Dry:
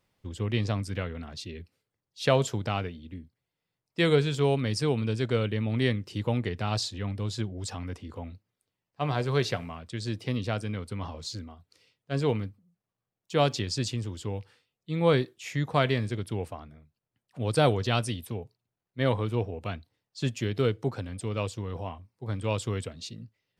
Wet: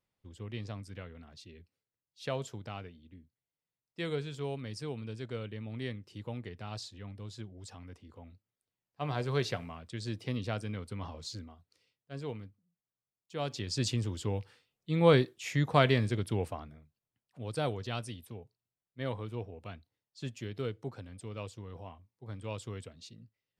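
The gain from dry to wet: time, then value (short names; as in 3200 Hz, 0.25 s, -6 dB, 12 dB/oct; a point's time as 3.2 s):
8.2 s -12.5 dB
9.24 s -5 dB
11.4 s -5 dB
12.13 s -13 dB
13.38 s -13 dB
13.88 s 0 dB
16.59 s 0 dB
17.42 s -10.5 dB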